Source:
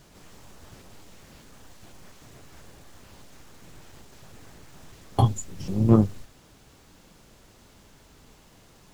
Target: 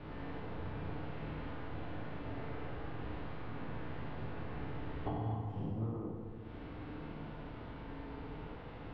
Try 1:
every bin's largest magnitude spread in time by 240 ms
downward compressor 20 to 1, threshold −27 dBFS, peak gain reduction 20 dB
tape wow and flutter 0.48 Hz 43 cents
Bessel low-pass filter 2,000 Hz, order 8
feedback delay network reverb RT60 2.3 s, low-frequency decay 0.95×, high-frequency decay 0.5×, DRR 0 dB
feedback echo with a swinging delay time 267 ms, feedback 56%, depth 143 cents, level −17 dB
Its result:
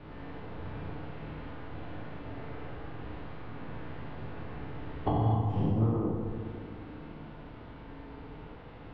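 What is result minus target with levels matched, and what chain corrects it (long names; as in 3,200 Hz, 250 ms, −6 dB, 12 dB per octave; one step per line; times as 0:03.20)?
downward compressor: peak gain reduction −11 dB
every bin's largest magnitude spread in time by 240 ms
downward compressor 20 to 1, threshold −38.5 dBFS, peak gain reduction 31 dB
tape wow and flutter 0.48 Hz 43 cents
Bessel low-pass filter 2,000 Hz, order 8
feedback delay network reverb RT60 2.3 s, low-frequency decay 0.95×, high-frequency decay 0.5×, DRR 0 dB
feedback echo with a swinging delay time 267 ms, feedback 56%, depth 143 cents, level −17 dB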